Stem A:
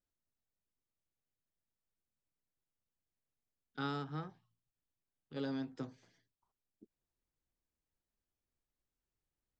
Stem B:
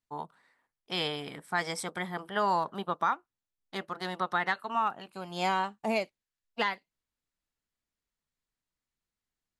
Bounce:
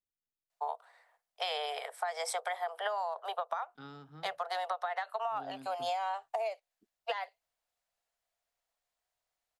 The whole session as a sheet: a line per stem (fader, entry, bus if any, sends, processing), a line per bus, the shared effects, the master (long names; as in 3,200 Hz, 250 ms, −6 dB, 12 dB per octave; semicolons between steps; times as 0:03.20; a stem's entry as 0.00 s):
−10.5 dB, 0.00 s, no send, no processing
+2.5 dB, 0.50 s, no send, Butterworth high-pass 450 Hz 72 dB per octave; parametric band 700 Hz +12.5 dB 0.42 octaves; downward compressor, threshold −30 dBFS, peak gain reduction 11.5 dB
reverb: not used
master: downward compressor, threshold −31 dBFS, peak gain reduction 6.5 dB